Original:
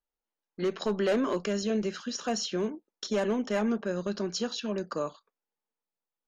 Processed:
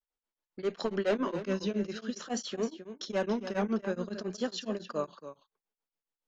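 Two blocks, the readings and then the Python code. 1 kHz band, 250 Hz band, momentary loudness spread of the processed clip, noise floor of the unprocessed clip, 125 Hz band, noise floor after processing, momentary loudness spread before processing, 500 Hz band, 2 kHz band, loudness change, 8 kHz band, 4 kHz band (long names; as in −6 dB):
−2.5 dB, −3.0 dB, 8 LU, below −85 dBFS, −2.0 dB, below −85 dBFS, 7 LU, −3.0 dB, −2.5 dB, −3.0 dB, can't be measured, −5.0 dB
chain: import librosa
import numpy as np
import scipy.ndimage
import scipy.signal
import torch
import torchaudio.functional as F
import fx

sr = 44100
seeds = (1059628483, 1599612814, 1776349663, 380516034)

y = scipy.signal.sosfilt(scipy.signal.butter(2, 6100.0, 'lowpass', fs=sr, output='sos'), x)
y = y + 10.0 ** (-12.0 / 20.0) * np.pad(y, (int(275 * sr / 1000.0), 0))[:len(y)]
y = fx.vibrato(y, sr, rate_hz=0.5, depth_cents=88.0)
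y = y * np.abs(np.cos(np.pi * 7.2 * np.arange(len(y)) / sr))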